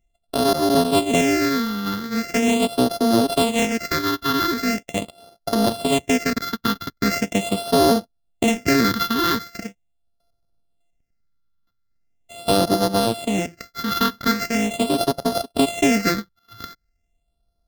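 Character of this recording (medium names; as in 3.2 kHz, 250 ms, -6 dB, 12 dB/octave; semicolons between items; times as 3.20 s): a buzz of ramps at a fixed pitch in blocks of 64 samples; phasing stages 6, 0.41 Hz, lowest notch 630–2300 Hz; AAC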